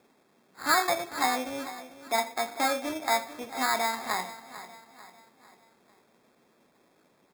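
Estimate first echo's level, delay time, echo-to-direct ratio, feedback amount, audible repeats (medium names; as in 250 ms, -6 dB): -14.5 dB, 446 ms, -13.5 dB, 45%, 3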